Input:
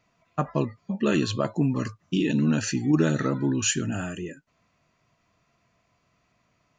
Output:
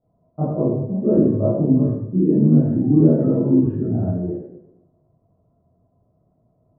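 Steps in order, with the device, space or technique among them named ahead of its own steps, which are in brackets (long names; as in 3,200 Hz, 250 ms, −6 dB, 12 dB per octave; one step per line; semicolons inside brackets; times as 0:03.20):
next room (low-pass filter 640 Hz 24 dB per octave; convolution reverb RT60 0.90 s, pre-delay 17 ms, DRR −11 dB)
level −2.5 dB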